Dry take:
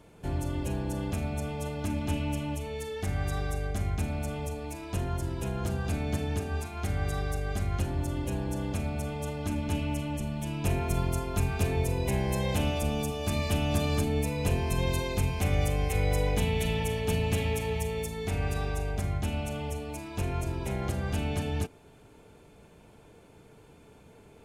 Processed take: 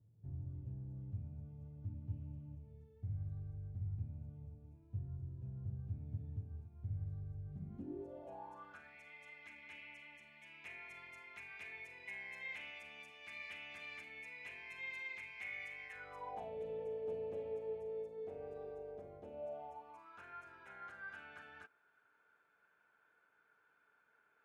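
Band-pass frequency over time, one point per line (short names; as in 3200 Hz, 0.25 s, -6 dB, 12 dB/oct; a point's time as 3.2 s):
band-pass, Q 8.5
7.45 s 110 Hz
8.15 s 550 Hz
8.99 s 2100 Hz
15.83 s 2100 Hz
16.61 s 500 Hz
19.33 s 500 Hz
20.24 s 1500 Hz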